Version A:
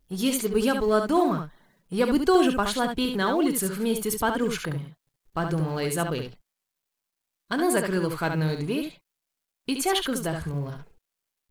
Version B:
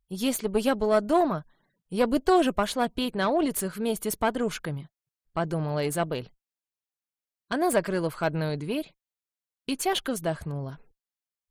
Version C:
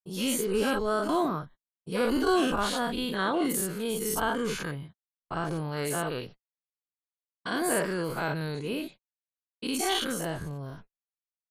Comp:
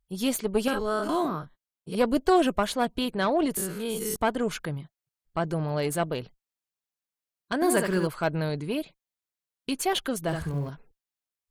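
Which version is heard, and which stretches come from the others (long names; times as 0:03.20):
B
0:00.68–0:01.95: punch in from C
0:03.57–0:04.16: punch in from C
0:07.62–0:08.07: punch in from A
0:10.28–0:10.69: punch in from A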